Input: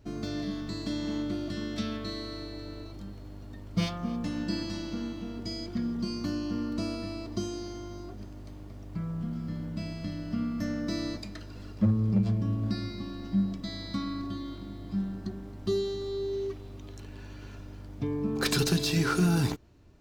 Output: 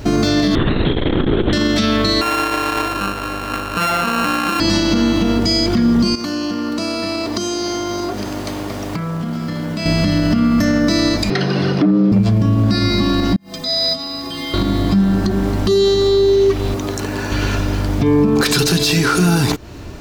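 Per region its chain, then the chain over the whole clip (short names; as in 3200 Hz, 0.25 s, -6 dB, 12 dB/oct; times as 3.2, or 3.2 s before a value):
0.55–1.53 LPC vocoder at 8 kHz whisper + core saturation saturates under 90 Hz
2.21–4.6 sample sorter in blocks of 32 samples + tone controls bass -14 dB, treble -10 dB
6.15–9.86 HPF 320 Hz 6 dB/oct + compressor 10:1, threshold -45 dBFS
11.3–12.12 polynomial smoothing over 15 samples + frequency shift +88 Hz
13.36–14.54 tilt +2 dB/oct + negative-ratio compressor -40 dBFS + metallic resonator 76 Hz, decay 0.55 s, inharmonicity 0.03
16.74–17.32 HPF 190 Hz 6 dB/oct + bell 3100 Hz -7.5 dB 1.1 oct
whole clip: low shelf 390 Hz -5 dB; compressor 3:1, threshold -41 dBFS; maximiser +35.5 dB; gain -5.5 dB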